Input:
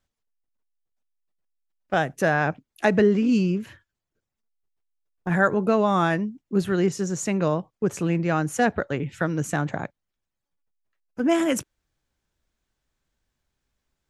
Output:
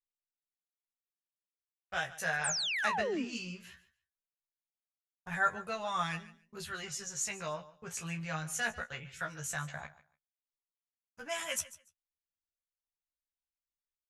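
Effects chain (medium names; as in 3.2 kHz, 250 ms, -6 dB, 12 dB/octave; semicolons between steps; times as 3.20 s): amplifier tone stack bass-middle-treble 10-0-10; doubling 13 ms -3 dB; gate with hold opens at -57 dBFS; flange 0.18 Hz, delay 9.9 ms, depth 8.9 ms, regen +28%; painted sound fall, 2.44–3.25 s, 220–9300 Hz -34 dBFS; feedback delay 144 ms, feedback 18%, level -17.5 dB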